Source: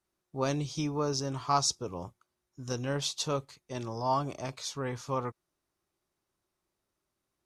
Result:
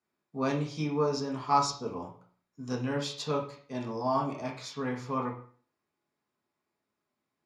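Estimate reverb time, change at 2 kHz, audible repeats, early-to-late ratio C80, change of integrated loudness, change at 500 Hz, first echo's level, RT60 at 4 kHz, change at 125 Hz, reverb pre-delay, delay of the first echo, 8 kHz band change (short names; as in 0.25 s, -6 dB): 0.50 s, +1.5 dB, none, 13.0 dB, +0.5 dB, +1.5 dB, none, 0.40 s, -1.0 dB, 3 ms, none, -8.0 dB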